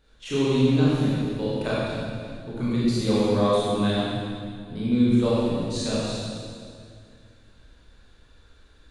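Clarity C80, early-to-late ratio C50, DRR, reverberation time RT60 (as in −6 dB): −2.5 dB, −5.0 dB, −9.0 dB, 2.2 s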